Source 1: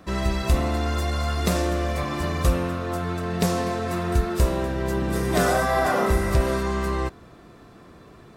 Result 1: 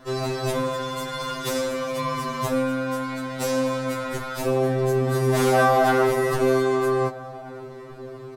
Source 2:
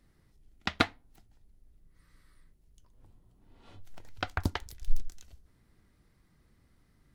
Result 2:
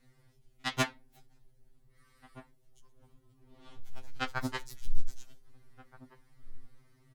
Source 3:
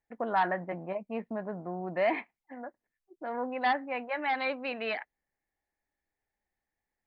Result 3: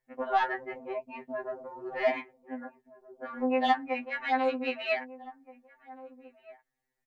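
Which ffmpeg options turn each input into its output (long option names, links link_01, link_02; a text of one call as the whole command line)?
ffmpeg -i in.wav -filter_complex "[0:a]aeval=exprs='0.447*sin(PI/2*2.82*val(0)/0.447)':channel_layout=same,asplit=2[link_01][link_02];[link_02]adelay=1574,volume=-18dB,highshelf=frequency=4000:gain=-35.4[link_03];[link_01][link_03]amix=inputs=2:normalize=0,afftfilt=real='re*2.45*eq(mod(b,6),0)':imag='im*2.45*eq(mod(b,6),0)':win_size=2048:overlap=0.75,volume=-8.5dB" out.wav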